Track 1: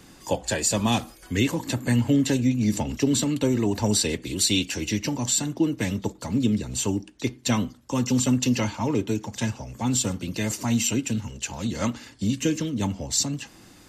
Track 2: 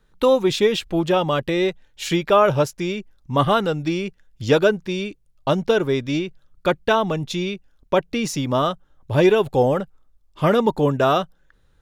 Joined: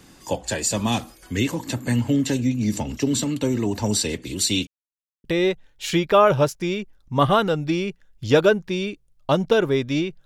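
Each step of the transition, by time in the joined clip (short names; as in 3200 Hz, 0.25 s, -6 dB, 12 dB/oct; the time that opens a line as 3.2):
track 1
4.67–5.24 mute
5.24 switch to track 2 from 1.42 s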